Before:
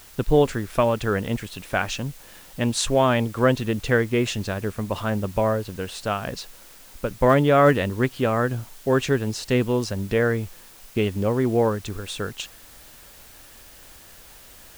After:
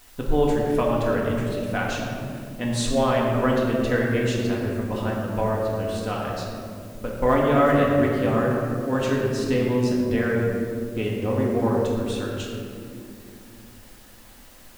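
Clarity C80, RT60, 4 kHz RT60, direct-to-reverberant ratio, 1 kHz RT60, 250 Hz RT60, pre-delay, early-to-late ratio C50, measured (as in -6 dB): 1.5 dB, 2.5 s, 1.1 s, -4.0 dB, 2.0 s, 4.3 s, 3 ms, 0.5 dB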